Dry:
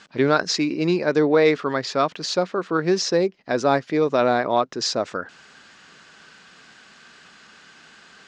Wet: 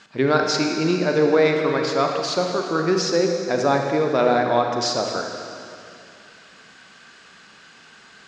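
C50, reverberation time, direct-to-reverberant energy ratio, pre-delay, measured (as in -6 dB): 3.0 dB, 2.5 s, 2.0 dB, 33 ms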